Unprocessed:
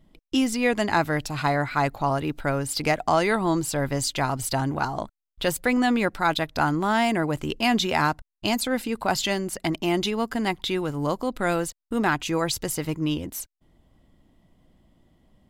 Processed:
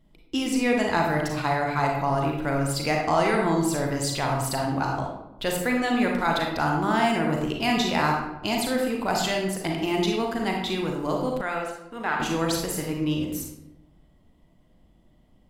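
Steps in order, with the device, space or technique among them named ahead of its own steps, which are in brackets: bathroom (reverberation RT60 0.95 s, pre-delay 34 ms, DRR -0.5 dB); 11.41–12.20 s: three-band isolator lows -12 dB, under 590 Hz, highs -12 dB, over 3.7 kHz; trim -3.5 dB

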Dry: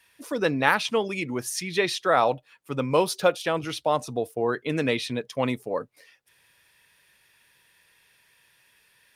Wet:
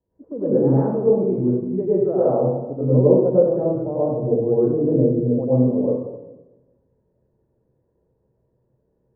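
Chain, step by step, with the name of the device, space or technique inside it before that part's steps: next room (low-pass 530 Hz 24 dB/octave; reverberation RT60 1.0 s, pre-delay 92 ms, DRR -9.5 dB); 4.14–5.44 s: low-pass 1.4 kHz 12 dB/octave

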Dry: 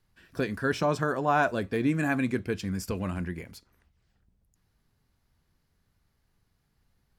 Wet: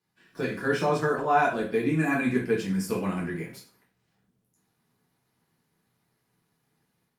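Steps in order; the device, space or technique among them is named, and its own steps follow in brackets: far-field microphone of a smart speaker (reverberation RT60 0.40 s, pre-delay 6 ms, DRR -5.5 dB; high-pass 120 Hz 24 dB/octave; level rider gain up to 7 dB; trim -8.5 dB; Opus 48 kbps 48 kHz)

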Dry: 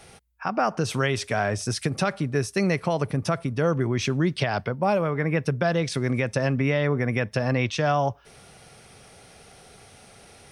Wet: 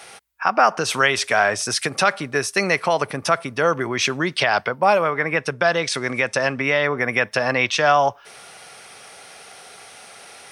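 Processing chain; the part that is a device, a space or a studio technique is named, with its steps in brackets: filter by subtraction (in parallel: low-pass 1.2 kHz 12 dB/octave + polarity flip); 5.10–6.98 s: on the sum: Chebyshev low-pass 9 kHz, order 2; trim +8.5 dB

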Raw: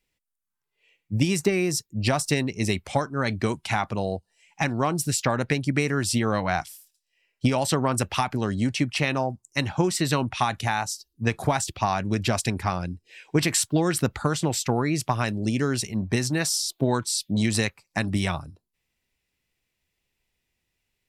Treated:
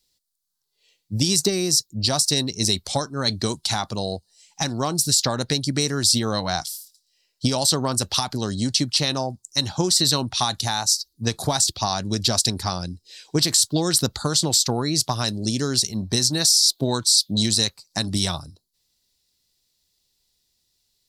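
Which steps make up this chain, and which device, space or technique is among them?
over-bright horn tweeter (resonant high shelf 3.2 kHz +10 dB, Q 3; peak limiter -7 dBFS, peak gain reduction 9 dB)

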